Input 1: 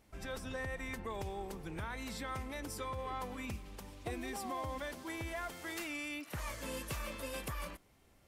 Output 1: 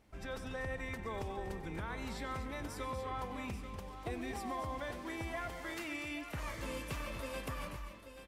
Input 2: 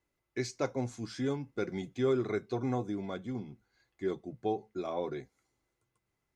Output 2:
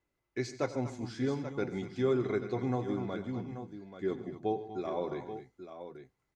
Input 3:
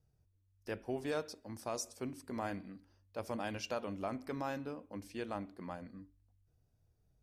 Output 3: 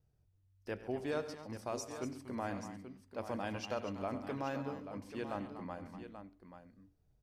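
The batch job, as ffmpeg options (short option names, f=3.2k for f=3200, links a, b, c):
-filter_complex "[0:a]highshelf=f=5.6k:g=-8,asplit=2[a][b];[b]aecho=0:1:94|138|241|242|834:0.15|0.158|0.251|0.15|0.299[c];[a][c]amix=inputs=2:normalize=0"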